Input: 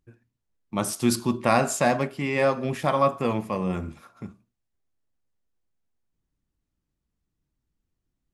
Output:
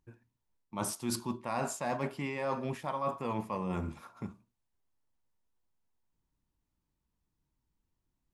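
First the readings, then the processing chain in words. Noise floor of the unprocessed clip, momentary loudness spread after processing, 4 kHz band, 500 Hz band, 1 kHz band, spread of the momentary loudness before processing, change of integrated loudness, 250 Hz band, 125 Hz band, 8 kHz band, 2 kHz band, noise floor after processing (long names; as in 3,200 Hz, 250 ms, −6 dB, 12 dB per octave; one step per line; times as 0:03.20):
−82 dBFS, 10 LU, −10.0 dB, −12.5 dB, −10.0 dB, 18 LU, −11.5 dB, −10.5 dB, −9.5 dB, −8.5 dB, −12.5 dB, −84 dBFS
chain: parametric band 940 Hz +9 dB 0.34 octaves
reversed playback
downward compressor 10 to 1, threshold −28 dBFS, peak gain reduction 15.5 dB
reversed playback
level −2.5 dB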